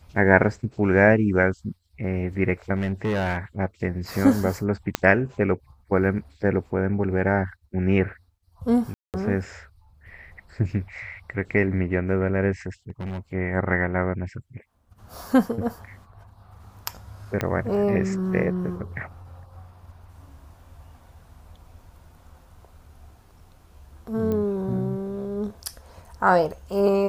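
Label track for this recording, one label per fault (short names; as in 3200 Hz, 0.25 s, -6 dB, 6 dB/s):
2.760000	3.370000	clipped -20.5 dBFS
4.950000	4.950000	pop -6 dBFS
8.940000	9.140000	gap 0.198 s
12.900000	13.200000	clipped -27.5 dBFS
17.410000	17.410000	pop -10 dBFS
24.320000	24.320000	pop -17 dBFS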